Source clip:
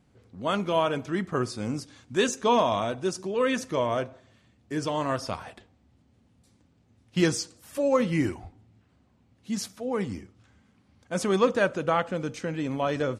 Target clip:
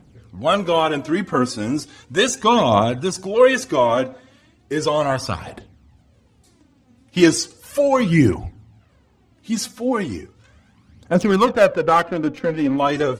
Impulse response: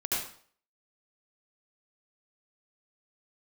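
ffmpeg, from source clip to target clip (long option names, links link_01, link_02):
-filter_complex "[0:a]asettb=1/sr,asplit=3[link_01][link_02][link_03];[link_01]atrim=end=11.144[link_04];[link_02]atrim=start=11.14:end=12.78,asetpts=PTS-STARTPTS,afade=type=in:duration=0.004:curve=qsin,afade=type=out:start_time=1.636:duration=0.004:curve=qsin,adynamicsmooth=sensitivity=5.5:basefreq=1400[link_05];[link_03]atrim=start=12.776[link_06];[link_04][link_05]acrossfade=duration=0.004:curve1=hsin:curve2=qsin[link_07];[link_07][link_06]acrossfade=duration=0.004:curve1=qsin:curve2=hsin,aphaser=in_gain=1:out_gain=1:delay=4.1:decay=0.56:speed=0.36:type=triangular,volume=7.5dB"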